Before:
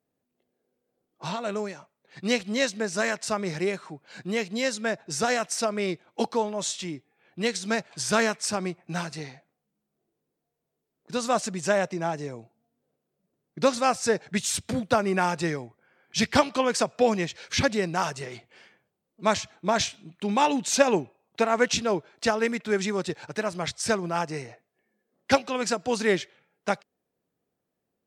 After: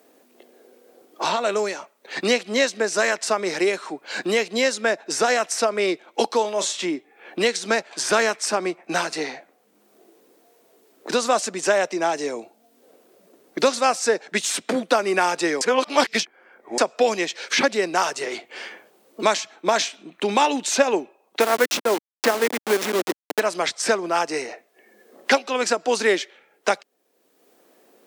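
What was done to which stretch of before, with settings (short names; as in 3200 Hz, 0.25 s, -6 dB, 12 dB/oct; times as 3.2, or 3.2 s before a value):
6.41–6.86 doubler 35 ms -12 dB
15.61–16.78 reverse
21.4–23.4 level-crossing sampler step -25 dBFS
whole clip: HPF 280 Hz 24 dB/oct; three-band squash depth 70%; gain +5.5 dB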